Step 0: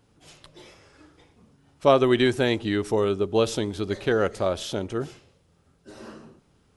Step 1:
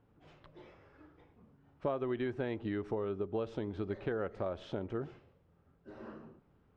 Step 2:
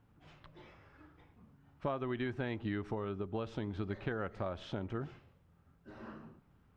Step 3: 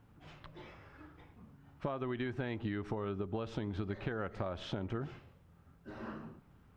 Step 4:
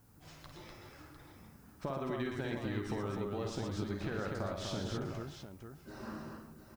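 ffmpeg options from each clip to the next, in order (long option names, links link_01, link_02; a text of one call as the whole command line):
ffmpeg -i in.wav -af "lowpass=1800,acompressor=threshold=-28dB:ratio=4,volume=-5.5dB" out.wav
ffmpeg -i in.wav -af "equalizer=frequency=450:width_type=o:width=1.3:gain=-8,volume=3dB" out.wav
ffmpeg -i in.wav -af "acompressor=threshold=-38dB:ratio=6,volume=4.5dB" out.wav
ffmpeg -i in.wav -filter_complex "[0:a]aexciter=amount=2.5:drive=9.4:freq=4400,asplit=2[link_01][link_02];[link_02]aecho=0:1:51|117|248|702:0.473|0.501|0.631|0.316[link_03];[link_01][link_03]amix=inputs=2:normalize=0,volume=-2dB" out.wav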